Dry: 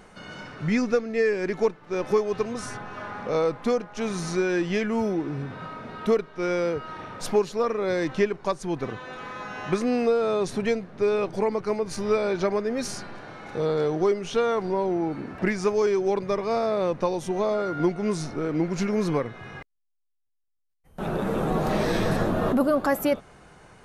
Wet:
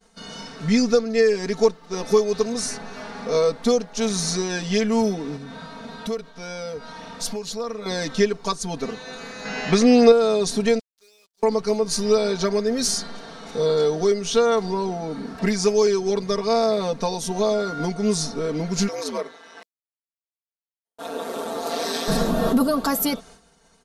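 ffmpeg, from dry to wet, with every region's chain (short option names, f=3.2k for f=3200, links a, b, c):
-filter_complex "[0:a]asettb=1/sr,asplit=3[a][b][c];[a]atrim=end=5.364[d];[b]atrim=start=5.36:end=7.86,asetpts=PTS-STARTPTS,afade=t=in:d=0.004:c=qsin,afade=t=out:st=2.496:d=0.004:c=qsin,acompressor=threshold=-35dB:ratio=2:attack=3.2:release=140:knee=1:detection=peak,bandreject=f=390:w=5.3[e];[c]atrim=start=7.856[f];[d][e]acrossfade=d=0.004:c1=hsin:c2=qsin[g];[g][f]acrossfade=d=0.004:c1=qsin:c2=hsin,asettb=1/sr,asplit=3[h][i][j];[h]atrim=end=9.454[k];[i]atrim=start=9.45:end=10.12,asetpts=PTS-STARTPTS,afade=t=in:d=0.004:c=qsin,afade=t=out:st=0.666:d=0.004:c=qsin,lowpass=6.1k,equalizer=f=2k:w=2.6:g=4,acontrast=28[l];[j]atrim=start=10.116[m];[k][l]acrossfade=d=0.004:c1=hsin:c2=qsin[n];[n][m]acrossfade=d=0.004:c1=qsin:c2=hsin,asettb=1/sr,asplit=3[o][p][q];[o]atrim=end=10.794[r];[p]atrim=start=10.79:end=11.43,asetpts=PTS-STARTPTS,afade=t=in:d=0.004:c=qsin,afade=t=out:st=0.636:d=0.004:c=qsin,bandpass=f=4.5k:t=q:w=0.74,acrusher=bits=6:mix=0:aa=0.5,acompressor=threshold=-51dB:ratio=3:attack=3.2:release=140:knee=1:detection=peak[s];[q]atrim=start=11.426[t];[r][s]acrossfade=d=0.004:c1=hsin:c2=qsin[u];[u][t]acrossfade=d=0.004:c1=qsin:c2=hsin,asettb=1/sr,asplit=3[v][w][x];[v]atrim=end=18.884[y];[w]atrim=start=18.88:end=22.08,asetpts=PTS-STARTPTS,afade=t=in:d=0.004:c=qsin,afade=t=out:st=3.196:d=0.004:c=qsin,highpass=f=340:w=0.5412,highpass=f=340:w=1.3066,aeval=exprs='val(0)*sin(2*PI*83*n/s)':c=same[z];[x]atrim=start=22.076[aa];[y][z]acrossfade=d=0.004:c1=hsin:c2=qsin[ab];[ab][aa]acrossfade=d=0.004:c1=qsin:c2=hsin,agate=range=-33dB:threshold=-42dB:ratio=3:detection=peak,highshelf=f=3.2k:t=q:w=1.5:g=8.5,aecho=1:1:4.4:0.92"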